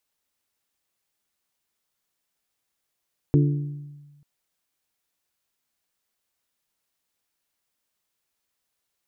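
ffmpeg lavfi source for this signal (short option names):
-f lavfi -i "aevalsrc='0.2*pow(10,-3*t/1.33)*sin(2*PI*145*t)+0.119*pow(10,-3*t/0.819)*sin(2*PI*290*t)+0.0708*pow(10,-3*t/0.721)*sin(2*PI*348*t)+0.0422*pow(10,-3*t/0.616)*sin(2*PI*435*t)':d=0.89:s=44100"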